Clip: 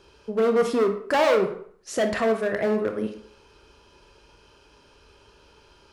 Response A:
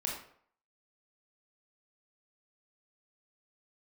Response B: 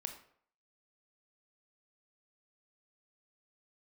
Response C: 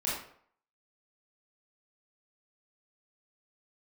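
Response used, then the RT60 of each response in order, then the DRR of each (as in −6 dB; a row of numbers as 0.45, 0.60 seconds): B; 0.60, 0.60, 0.60 seconds; −2.0, 5.5, −7.5 decibels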